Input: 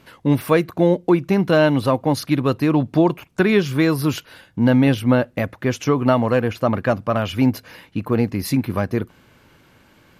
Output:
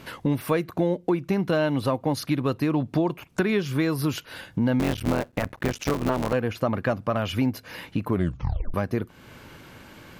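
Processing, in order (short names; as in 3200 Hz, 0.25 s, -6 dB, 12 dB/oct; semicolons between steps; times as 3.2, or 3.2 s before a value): 4.79–6.33 cycle switcher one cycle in 3, muted; 8.07 tape stop 0.67 s; compressor 2.5:1, threshold -34 dBFS, peak gain reduction 15.5 dB; gain +6.5 dB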